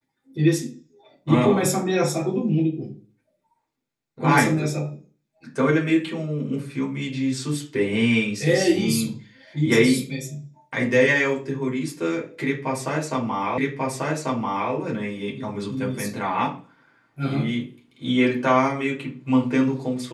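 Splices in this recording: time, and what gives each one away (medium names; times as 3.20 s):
13.58 s: repeat of the last 1.14 s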